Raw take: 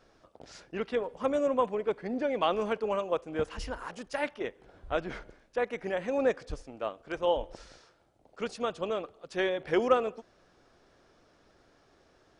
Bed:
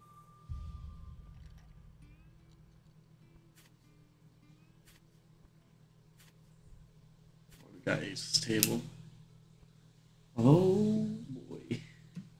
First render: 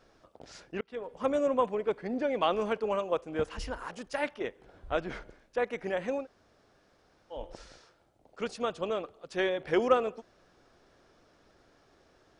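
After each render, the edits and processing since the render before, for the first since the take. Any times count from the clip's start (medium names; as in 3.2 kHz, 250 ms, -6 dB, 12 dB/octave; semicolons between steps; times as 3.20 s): 0.81–1.24 s: fade in; 6.19–7.38 s: room tone, crossfade 0.16 s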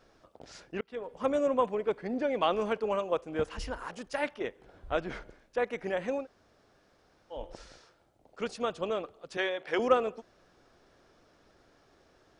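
9.37–9.79 s: frequency weighting A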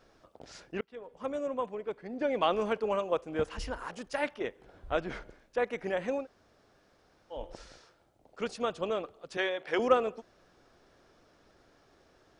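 0.85–2.21 s: gain -6.5 dB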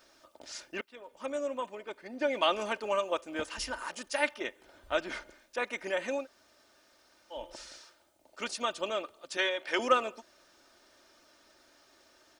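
tilt EQ +3 dB/octave; comb 3.3 ms, depth 53%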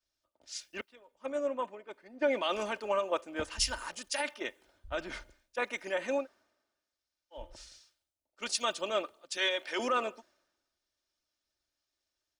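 peak limiter -23 dBFS, peak gain reduction 11.5 dB; three bands expanded up and down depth 100%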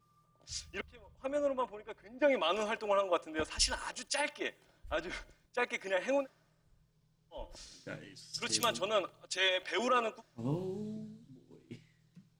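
add bed -12 dB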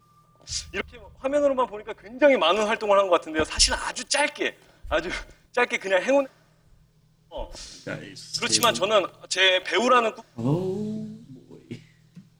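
trim +11.5 dB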